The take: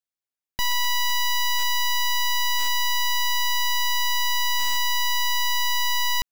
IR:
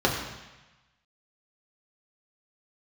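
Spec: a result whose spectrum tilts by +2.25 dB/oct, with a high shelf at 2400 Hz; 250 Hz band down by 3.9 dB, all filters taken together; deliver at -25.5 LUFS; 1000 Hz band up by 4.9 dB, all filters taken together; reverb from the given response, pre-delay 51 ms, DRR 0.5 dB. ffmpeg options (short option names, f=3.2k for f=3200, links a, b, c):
-filter_complex "[0:a]equalizer=f=250:t=o:g=-7.5,equalizer=f=1k:t=o:g=4.5,highshelf=f=2.4k:g=5,asplit=2[a][b];[1:a]atrim=start_sample=2205,adelay=51[c];[b][c]afir=irnorm=-1:irlink=0,volume=-16dB[d];[a][d]amix=inputs=2:normalize=0,volume=-8.5dB"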